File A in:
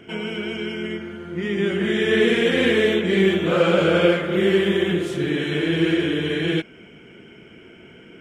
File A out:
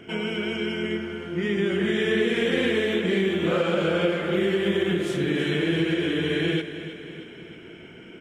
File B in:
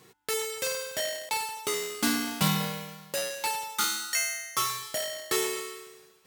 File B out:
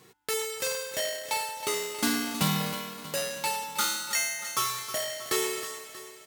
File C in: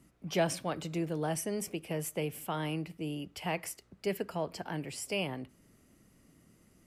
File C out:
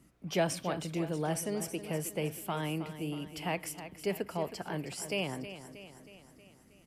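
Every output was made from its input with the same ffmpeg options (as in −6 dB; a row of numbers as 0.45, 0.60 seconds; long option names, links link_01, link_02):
-filter_complex "[0:a]acompressor=threshold=-20dB:ratio=6,asplit=2[link_01][link_02];[link_02]aecho=0:1:317|634|951|1268|1585|1902:0.251|0.141|0.0788|0.0441|0.0247|0.0138[link_03];[link_01][link_03]amix=inputs=2:normalize=0"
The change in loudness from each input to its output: −4.0, 0.0, +0.5 LU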